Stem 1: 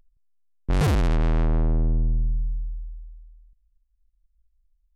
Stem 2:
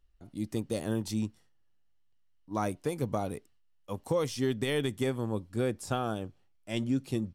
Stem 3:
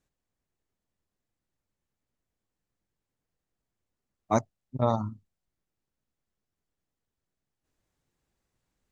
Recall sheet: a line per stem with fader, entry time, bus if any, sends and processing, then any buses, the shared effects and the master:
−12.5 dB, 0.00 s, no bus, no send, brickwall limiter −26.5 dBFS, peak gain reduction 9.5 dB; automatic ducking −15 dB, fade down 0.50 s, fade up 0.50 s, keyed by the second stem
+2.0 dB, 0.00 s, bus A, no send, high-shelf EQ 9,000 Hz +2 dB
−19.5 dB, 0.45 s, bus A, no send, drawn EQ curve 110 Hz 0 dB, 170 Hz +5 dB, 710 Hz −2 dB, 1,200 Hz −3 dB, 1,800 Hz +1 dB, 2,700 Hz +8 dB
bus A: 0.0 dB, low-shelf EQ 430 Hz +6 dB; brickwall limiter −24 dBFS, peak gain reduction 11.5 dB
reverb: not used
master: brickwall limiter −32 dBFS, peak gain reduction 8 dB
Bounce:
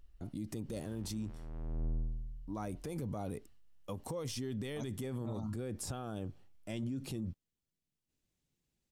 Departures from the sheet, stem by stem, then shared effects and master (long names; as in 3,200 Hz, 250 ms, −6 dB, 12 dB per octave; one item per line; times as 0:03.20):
stem 1 −12.5 dB → −5.0 dB
stem 3 −19.5 dB → −10.5 dB